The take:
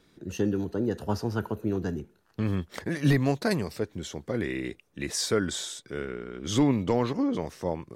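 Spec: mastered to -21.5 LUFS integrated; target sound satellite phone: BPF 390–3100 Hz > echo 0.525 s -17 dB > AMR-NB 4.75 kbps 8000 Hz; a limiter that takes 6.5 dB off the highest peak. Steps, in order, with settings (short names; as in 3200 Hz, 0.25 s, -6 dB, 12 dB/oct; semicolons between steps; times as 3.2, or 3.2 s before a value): limiter -19.5 dBFS; BPF 390–3100 Hz; echo 0.525 s -17 dB; gain +17 dB; AMR-NB 4.75 kbps 8000 Hz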